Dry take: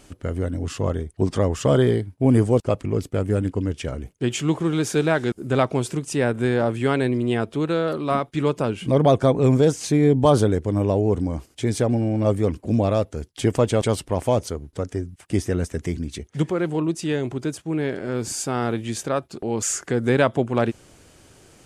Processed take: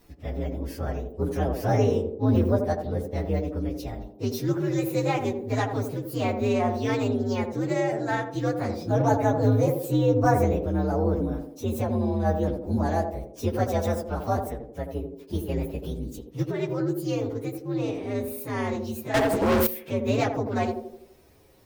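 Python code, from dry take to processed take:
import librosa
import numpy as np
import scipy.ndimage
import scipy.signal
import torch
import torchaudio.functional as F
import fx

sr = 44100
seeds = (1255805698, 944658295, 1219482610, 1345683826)

y = fx.partial_stretch(x, sr, pct=123)
y = fx.echo_banded(y, sr, ms=83, feedback_pct=57, hz=390.0, wet_db=-4)
y = fx.leveller(y, sr, passes=5, at=(19.14, 19.67))
y = y * librosa.db_to_amplitude(-3.5)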